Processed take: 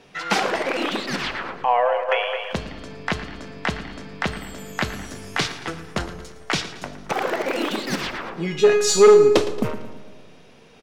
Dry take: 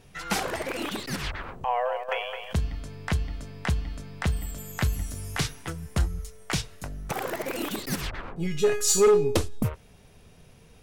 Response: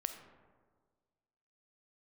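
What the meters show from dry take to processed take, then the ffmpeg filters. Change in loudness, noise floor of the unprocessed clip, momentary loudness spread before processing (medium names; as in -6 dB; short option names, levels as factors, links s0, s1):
+7.0 dB, -54 dBFS, 13 LU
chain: -filter_complex "[0:a]acrossover=split=190 6000:gain=0.112 1 0.141[s0][s1][s2];[s0][s1][s2]amix=inputs=3:normalize=0,aecho=1:1:113|226|339|452|565:0.188|0.0961|0.049|0.025|0.0127,asplit=2[s3][s4];[1:a]atrim=start_sample=2205[s5];[s4][s5]afir=irnorm=-1:irlink=0,volume=1.19[s6];[s3][s6]amix=inputs=2:normalize=0,volume=1.19"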